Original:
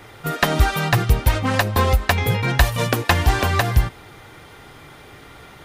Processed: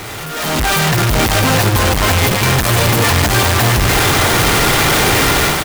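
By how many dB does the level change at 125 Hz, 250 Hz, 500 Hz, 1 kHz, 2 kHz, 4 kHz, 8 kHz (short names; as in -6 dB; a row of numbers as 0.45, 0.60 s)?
+5.5, +9.0, +8.0, +8.0, +8.5, +12.5, +16.5 dB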